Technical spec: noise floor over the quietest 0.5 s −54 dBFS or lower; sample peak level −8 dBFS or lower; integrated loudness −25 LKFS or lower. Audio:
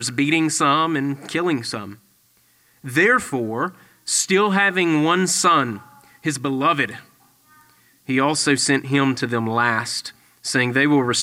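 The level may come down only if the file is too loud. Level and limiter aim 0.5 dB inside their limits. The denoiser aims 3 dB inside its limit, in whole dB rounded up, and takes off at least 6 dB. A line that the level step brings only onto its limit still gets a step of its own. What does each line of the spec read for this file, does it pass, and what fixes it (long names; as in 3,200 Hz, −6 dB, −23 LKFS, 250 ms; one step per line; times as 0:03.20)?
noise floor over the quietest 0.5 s −59 dBFS: in spec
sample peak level −5.5 dBFS: out of spec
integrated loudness −19.5 LKFS: out of spec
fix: level −6 dB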